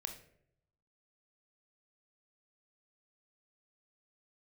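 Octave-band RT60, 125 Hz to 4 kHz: 1.1, 0.80, 0.80, 0.55, 0.55, 0.40 s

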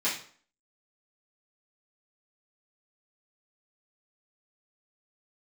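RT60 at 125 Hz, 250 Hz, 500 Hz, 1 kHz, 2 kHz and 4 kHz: 0.45, 0.50, 0.50, 0.50, 0.45, 0.40 s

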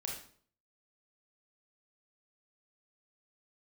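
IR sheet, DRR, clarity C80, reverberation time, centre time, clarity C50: -1.5 dB, 8.5 dB, 0.50 s, 37 ms, 3.5 dB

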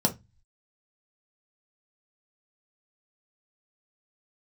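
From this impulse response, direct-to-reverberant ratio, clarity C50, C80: 1.5 dB, 16.5 dB, 27.5 dB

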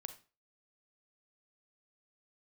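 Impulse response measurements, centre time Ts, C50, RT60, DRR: 8 ms, 11.5 dB, 0.35 s, 8.5 dB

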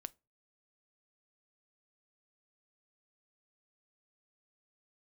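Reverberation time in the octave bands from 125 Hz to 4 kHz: 0.45, 0.30, 0.30, 0.25, 0.20, 0.20 s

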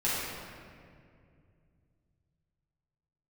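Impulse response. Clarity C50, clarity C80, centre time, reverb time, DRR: -3.0 dB, -0.5 dB, 0.134 s, 2.3 s, -10.0 dB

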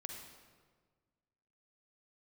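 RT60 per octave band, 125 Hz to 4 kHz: 2.0, 1.8, 1.7, 1.5, 1.2, 1.1 s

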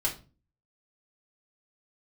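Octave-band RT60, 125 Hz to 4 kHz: 0.55, 0.55, 0.35, 0.30, 0.25, 0.25 s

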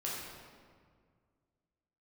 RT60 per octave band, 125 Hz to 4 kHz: 2.5, 2.3, 2.0, 1.8, 1.5, 1.2 s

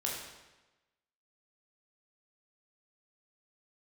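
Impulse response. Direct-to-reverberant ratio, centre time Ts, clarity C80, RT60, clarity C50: -3.5 dB, 60 ms, 4.5 dB, 1.1 s, 1.5 dB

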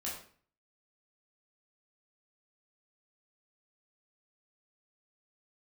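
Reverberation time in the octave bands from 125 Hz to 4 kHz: 0.60, 0.55, 0.50, 0.45, 0.45, 0.40 s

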